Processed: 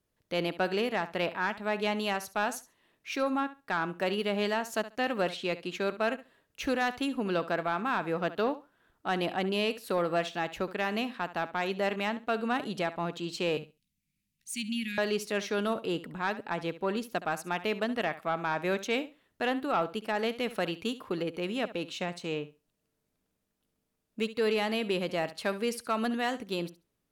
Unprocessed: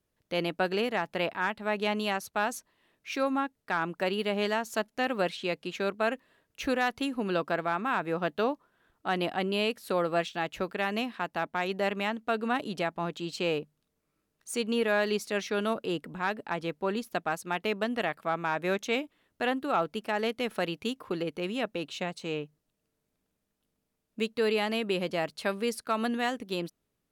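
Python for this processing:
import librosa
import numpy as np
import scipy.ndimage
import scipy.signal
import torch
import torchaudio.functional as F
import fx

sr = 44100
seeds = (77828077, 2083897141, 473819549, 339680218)

p1 = fx.cheby1_bandstop(x, sr, low_hz=220.0, high_hz=2200.0, order=3, at=(13.57, 14.98))
p2 = p1 + fx.room_flutter(p1, sr, wall_m=11.8, rt60_s=0.26, dry=0)
y = 10.0 ** (-17.5 / 20.0) * np.tanh(p2 / 10.0 ** (-17.5 / 20.0))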